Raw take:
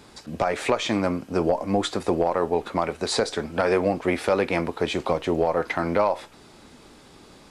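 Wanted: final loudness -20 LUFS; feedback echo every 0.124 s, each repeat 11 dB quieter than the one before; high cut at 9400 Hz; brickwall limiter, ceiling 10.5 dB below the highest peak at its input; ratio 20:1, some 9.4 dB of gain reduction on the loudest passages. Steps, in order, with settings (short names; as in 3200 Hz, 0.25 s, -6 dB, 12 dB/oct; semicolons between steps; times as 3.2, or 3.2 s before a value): LPF 9400 Hz; compressor 20:1, threshold -26 dBFS; limiter -23.5 dBFS; feedback echo 0.124 s, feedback 28%, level -11 dB; gain +14.5 dB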